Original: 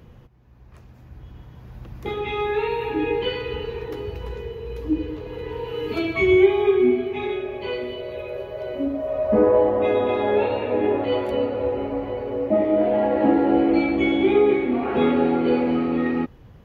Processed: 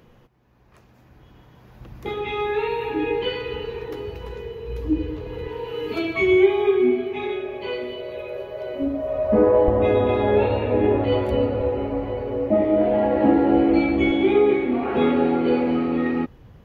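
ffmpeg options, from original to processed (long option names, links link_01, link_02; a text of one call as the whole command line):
ffmpeg -i in.wav -af "asetnsamples=nb_out_samples=441:pad=0,asendcmd='1.8 equalizer g -4;4.68 equalizer g 4;5.48 equalizer g -6;8.82 equalizer g 3.5;9.68 equalizer g 14.5;11.61 equalizer g 6.5;14.1 equalizer g 0',equalizer=frequency=63:width_type=o:width=2.5:gain=-12.5" out.wav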